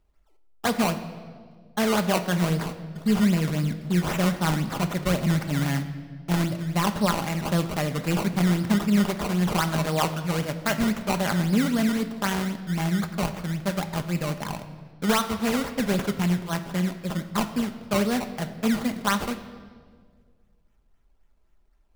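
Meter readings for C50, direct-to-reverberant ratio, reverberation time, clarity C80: 11.5 dB, 7.0 dB, 1.8 s, 13.0 dB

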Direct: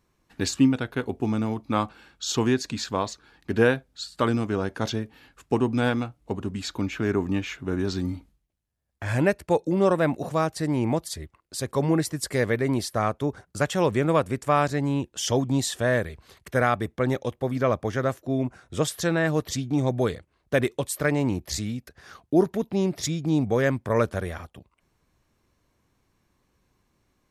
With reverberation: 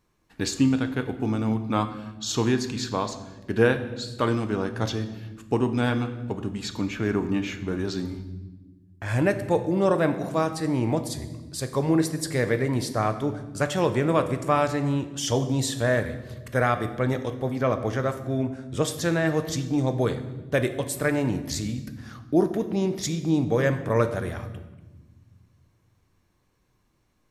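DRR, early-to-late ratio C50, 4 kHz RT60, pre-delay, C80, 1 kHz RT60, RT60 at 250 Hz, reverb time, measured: 8.0 dB, 11.5 dB, 0.95 s, 7 ms, 13.5 dB, 1.0 s, 2.4 s, 1.2 s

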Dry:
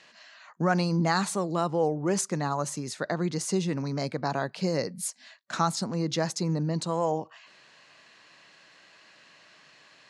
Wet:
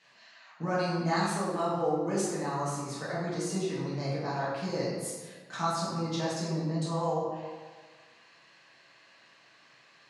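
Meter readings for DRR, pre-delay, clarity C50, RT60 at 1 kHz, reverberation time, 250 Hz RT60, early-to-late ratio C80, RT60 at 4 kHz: -9.5 dB, 4 ms, 0.0 dB, 1.5 s, 1.5 s, 1.4 s, 2.5 dB, 0.95 s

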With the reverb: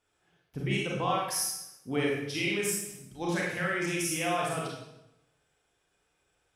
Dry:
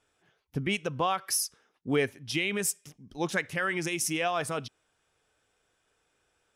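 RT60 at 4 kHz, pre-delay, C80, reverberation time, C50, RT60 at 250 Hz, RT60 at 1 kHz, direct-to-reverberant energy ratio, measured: 0.75 s, 30 ms, 3.5 dB, 0.85 s, 0.0 dB, 0.95 s, 0.85 s, -4.5 dB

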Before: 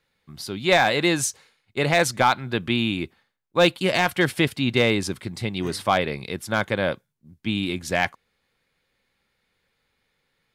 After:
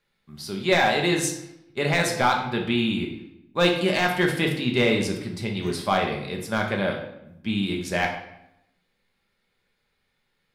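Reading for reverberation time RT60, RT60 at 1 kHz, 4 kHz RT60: 0.80 s, 0.80 s, 0.65 s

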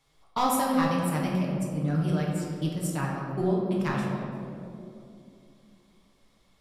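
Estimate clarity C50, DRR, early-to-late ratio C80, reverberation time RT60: 0.5 dB, -3.5 dB, 2.5 dB, 2.7 s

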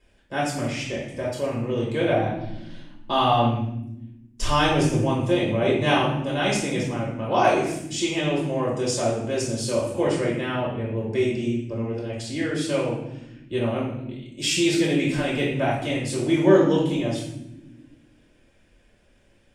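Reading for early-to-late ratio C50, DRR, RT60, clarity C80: 2.5 dB, -5.0 dB, not exponential, 6.5 dB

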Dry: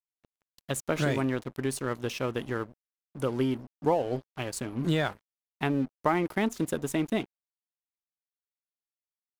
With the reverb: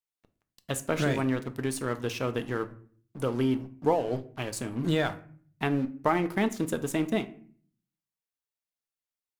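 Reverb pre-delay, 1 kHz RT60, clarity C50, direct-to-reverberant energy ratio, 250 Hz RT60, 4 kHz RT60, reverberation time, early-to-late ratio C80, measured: 4 ms, 0.45 s, 16.0 dB, 9.0 dB, 0.75 s, 0.30 s, 0.50 s, 20.5 dB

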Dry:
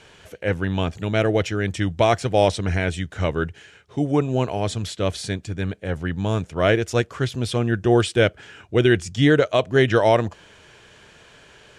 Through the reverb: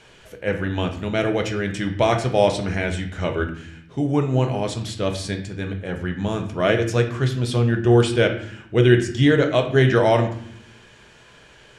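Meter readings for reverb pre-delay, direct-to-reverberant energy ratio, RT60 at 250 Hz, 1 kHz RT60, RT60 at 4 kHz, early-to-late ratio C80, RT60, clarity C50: 5 ms, 4.0 dB, 1.1 s, 0.65 s, 0.50 s, 12.5 dB, 0.70 s, 9.0 dB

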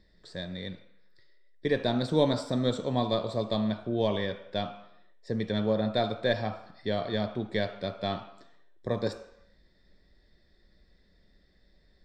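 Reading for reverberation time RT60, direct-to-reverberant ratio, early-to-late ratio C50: 0.75 s, 6.0 dB, 10.5 dB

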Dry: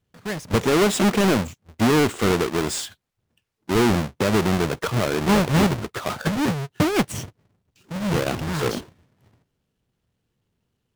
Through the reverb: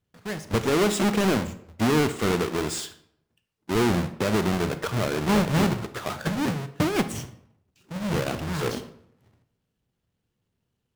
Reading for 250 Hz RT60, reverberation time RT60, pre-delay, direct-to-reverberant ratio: 0.80 s, 0.70 s, 28 ms, 11.0 dB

